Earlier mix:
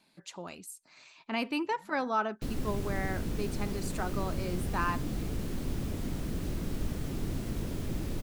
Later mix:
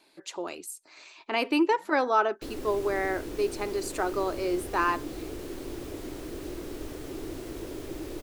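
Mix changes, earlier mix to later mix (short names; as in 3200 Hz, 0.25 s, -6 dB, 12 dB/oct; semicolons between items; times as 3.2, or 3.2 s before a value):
speech +5.5 dB; master: add resonant low shelf 260 Hz -8.5 dB, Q 3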